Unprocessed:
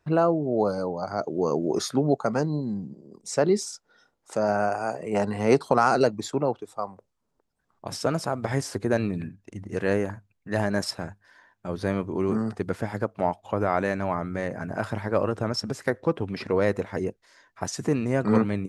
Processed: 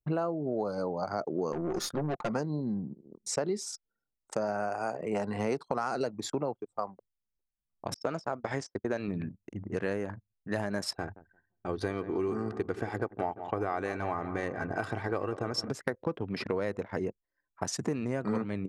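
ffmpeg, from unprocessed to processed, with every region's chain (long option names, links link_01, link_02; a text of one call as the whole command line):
ffmpeg -i in.wav -filter_complex "[0:a]asettb=1/sr,asplit=3[link_01][link_02][link_03];[link_01]atrim=end=1.524[link_04];[link_02]atrim=start=1.52:end=2.29,asetpts=PTS-STARTPTS,afade=type=in:duration=0.004:curve=qsin,afade=type=out:start_time=0.766:duration=0.004:curve=qsin,aecho=1:1:5.7:0.6,atrim=end_sample=33957,aeval=exprs='(tanh(14.1*val(0)+0.65)-tanh(0.65))/14.1':channel_layout=same[link_05];[link_03]atrim=start=2.286[link_06];[link_04][link_05]acrossfade=duration=0.004:curve1=hsin:curve2=qsin[link_07];[link_07][link_06]acrossfade=duration=0.004:curve1=qsin:curve2=hsin,asettb=1/sr,asplit=3[link_08][link_09][link_10];[link_08]atrim=end=7.944[link_11];[link_09]atrim=start=7.94:end=9.08,asetpts=PTS-STARTPTS,afade=type=in:duration=0.004:curve=qsin,afade=type=out:start_time=1.136:duration=0.004:curve=qsin,agate=range=-33dB:threshold=-29dB:ratio=3:release=100:detection=peak,lowpass=frequency=7600:width=0.5412,lowpass=frequency=7600:width=1.3066,lowshelf=frequency=190:gain=-8.5[link_12];[link_10]atrim=start=9.076[link_13];[link_11][link_12]acrossfade=duration=0.004:curve1=hsin:curve2=qsin[link_14];[link_14][link_13]acrossfade=duration=0.004:curve1=qsin:curve2=hsin,asettb=1/sr,asplit=3[link_15][link_16][link_17];[link_15]atrim=end=10.934[link_18];[link_16]atrim=start=10.93:end=15.69,asetpts=PTS-STARTPTS,afade=type=in:duration=0.004:curve=qsin,afade=type=out:start_time=4.756:duration=0.004:curve=qsin,aecho=1:1:2.6:0.5,atrim=end_sample=209916,asplit=2[link_19][link_20];[link_20]adelay=173,lowpass=frequency=4600:poles=1,volume=-14.5dB,asplit=2[link_21][link_22];[link_22]adelay=173,lowpass=frequency=4600:poles=1,volume=0.54,asplit=2[link_23][link_24];[link_24]adelay=173,lowpass=frequency=4600:poles=1,volume=0.54,asplit=2[link_25][link_26];[link_26]adelay=173,lowpass=frequency=4600:poles=1,volume=0.54,asplit=2[link_27][link_28];[link_28]adelay=173,lowpass=frequency=4600:poles=1,volume=0.54[link_29];[link_19][link_21][link_23][link_25][link_27][link_29]amix=inputs=6:normalize=0,atrim=end_sample=209916[link_30];[link_17]atrim=start=15.686[link_31];[link_18][link_30]acrossfade=duration=0.004:curve1=hsin:curve2=qsin[link_32];[link_32][link_31]acrossfade=duration=0.004:curve1=qsin:curve2=hsin,anlmdn=0.251,lowshelf=frequency=75:gain=-7,acompressor=threshold=-28dB:ratio=6" out.wav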